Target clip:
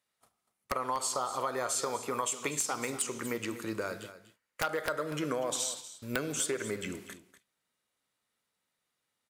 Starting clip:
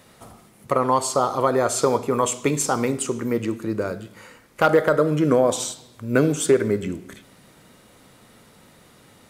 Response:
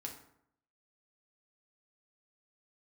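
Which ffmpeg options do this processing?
-filter_complex "[0:a]agate=range=-29dB:threshold=-39dB:ratio=16:detection=peak,tiltshelf=f=700:g=-7.5,acompressor=threshold=-25dB:ratio=4,aeval=exprs='(mod(4.22*val(0)+1,2)-1)/4.22':c=same,asplit=2[a][b];[b]aecho=0:1:242:0.2[c];[a][c]amix=inputs=2:normalize=0,volume=-5.5dB"

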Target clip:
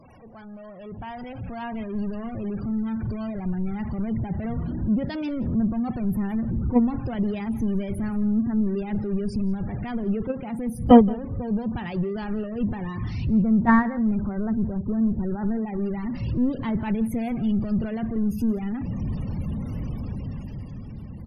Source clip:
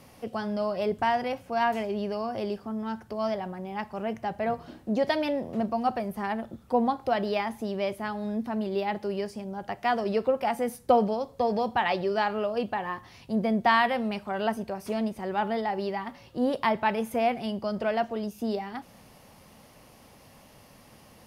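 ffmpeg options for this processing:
-filter_complex "[0:a]aeval=exprs='val(0)+0.5*0.0562*sgn(val(0))':c=same,asplit=3[a][b][c];[a]afade=t=out:st=13.41:d=0.02[d];[b]lowpass=f=1.9k:w=0.5412,lowpass=f=1.9k:w=1.3066,afade=t=in:st=13.41:d=0.02,afade=t=out:st=15.65:d=0.02[e];[c]afade=t=in:st=15.65:d=0.02[f];[d][e][f]amix=inputs=3:normalize=0,afftfilt=real='re*gte(hypot(re,im),0.0398)':imag='im*gte(hypot(re,im),0.0398)':win_size=1024:overlap=0.75,agate=range=-20dB:threshold=-17dB:ratio=16:detection=peak,asubboost=boost=11.5:cutoff=200,dynaudnorm=f=110:g=21:m=9dB,aecho=1:1:172:0.0794,volume=1.5dB" -ar 48000 -c:a aac -b:a 48k

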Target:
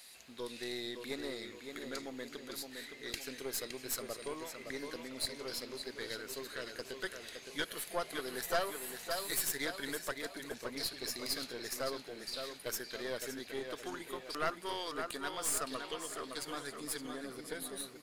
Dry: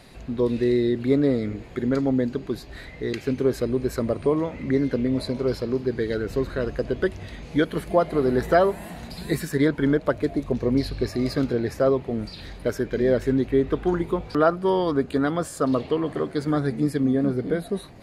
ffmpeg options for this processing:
-filter_complex "[0:a]aderivative,asplit=2[a][b];[b]adelay=565,lowpass=f=4.9k:p=1,volume=-6dB,asplit=2[c][d];[d]adelay=565,lowpass=f=4.9k:p=1,volume=0.45,asplit=2[e][f];[f]adelay=565,lowpass=f=4.9k:p=1,volume=0.45,asplit=2[g][h];[h]adelay=565,lowpass=f=4.9k:p=1,volume=0.45,asplit=2[i][j];[j]adelay=565,lowpass=f=4.9k:p=1,volume=0.45[k];[c][e][g][i][k]amix=inputs=5:normalize=0[l];[a][l]amix=inputs=2:normalize=0,aeval=exprs='(tanh(39.8*val(0)+0.7)-tanh(0.7))/39.8':c=same,volume=7.5dB"

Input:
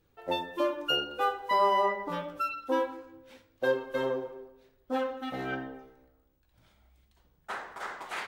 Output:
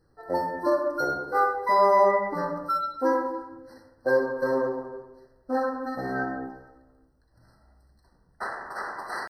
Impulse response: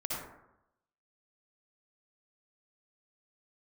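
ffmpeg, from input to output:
-filter_complex "[0:a]atempo=0.89,asplit=2[a][b];[1:a]atrim=start_sample=2205[c];[b][c]afir=irnorm=-1:irlink=0,volume=-7dB[d];[a][d]amix=inputs=2:normalize=0,afftfilt=real='re*eq(mod(floor(b*sr/1024/2000),2),0)':imag='im*eq(mod(floor(b*sr/1024/2000),2),0)':win_size=1024:overlap=0.75,volume=2dB"

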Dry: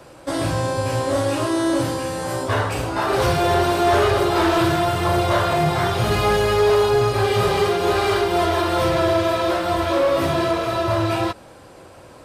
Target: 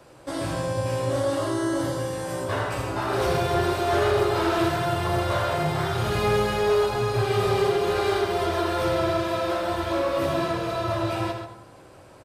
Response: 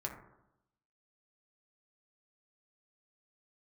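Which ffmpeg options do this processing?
-filter_complex "[0:a]asettb=1/sr,asplit=3[a][b][c];[a]atrim=end=1.204[d];[b]atrim=start=1.2:end=2.13,asetpts=PTS-STARTPTS,afade=t=in:d=0.004:c=qsin,afade=t=out:st=0.926:d=0.004:c=qsin,bandreject=f=2.5k:w=5.8[e];[c]atrim=start=2.126[f];[d][e]acrossfade=d=0.004:c1=hsin:c2=qsin[g];[g][f]acrossfade=d=0.004:c1=qsin:c2=hsin,asplit=2[h][i];[i]adelay=134.1,volume=-8dB,highshelf=f=4k:g=-3.02[j];[h][j]amix=inputs=2:normalize=0,asplit=2[k][l];[1:a]atrim=start_sample=2205,adelay=82[m];[l][m]afir=irnorm=-1:irlink=0,volume=-6dB[n];[k][n]amix=inputs=2:normalize=0,volume=-7dB"

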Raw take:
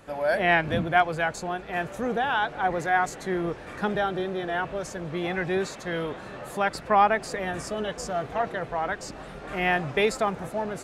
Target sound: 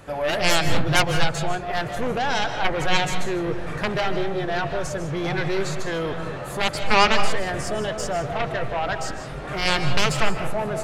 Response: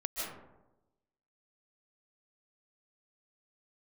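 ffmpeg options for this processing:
-filter_complex "[0:a]aeval=exprs='0.447*(cos(1*acos(clip(val(0)/0.447,-1,1)))-cos(1*PI/2))+0.0282*(cos(6*acos(clip(val(0)/0.447,-1,1)))-cos(6*PI/2))+0.178*(cos(7*acos(clip(val(0)/0.447,-1,1)))-cos(7*PI/2))':c=same,asplit=2[a][b];[b]lowshelf=f=180:t=q:w=3:g=7[c];[1:a]atrim=start_sample=2205,afade=t=out:st=0.34:d=0.01,atrim=end_sample=15435[d];[c][d]afir=irnorm=-1:irlink=0,volume=-6.5dB[e];[a][e]amix=inputs=2:normalize=0,volume=-2.5dB"

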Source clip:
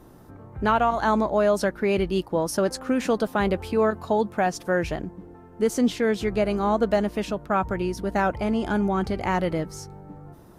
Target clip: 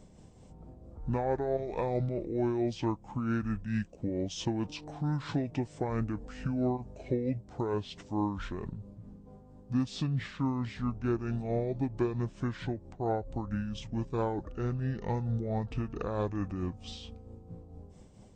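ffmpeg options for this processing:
-af "acompressor=threshold=-29dB:ratio=1.5,tremolo=f=7.8:d=0.44,asetrate=25442,aresample=44100,volume=-3.5dB"

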